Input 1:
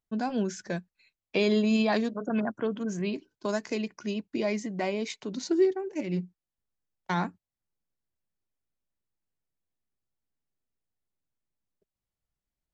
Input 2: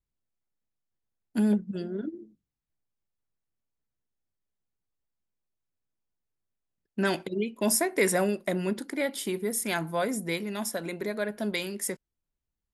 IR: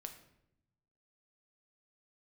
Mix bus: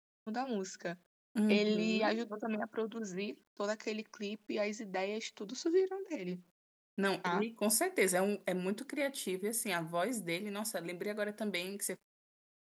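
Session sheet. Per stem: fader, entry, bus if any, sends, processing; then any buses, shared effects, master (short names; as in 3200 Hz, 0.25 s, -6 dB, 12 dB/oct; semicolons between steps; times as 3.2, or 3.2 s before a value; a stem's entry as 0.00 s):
-5.0 dB, 0.15 s, send -20.5 dB, HPF 270 Hz 6 dB/oct
-6.0 dB, 0.00 s, send -22.5 dB, dry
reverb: on, RT60 0.80 s, pre-delay 6 ms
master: gate with hold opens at -54 dBFS; HPF 130 Hz 6 dB/oct; requantised 12-bit, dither none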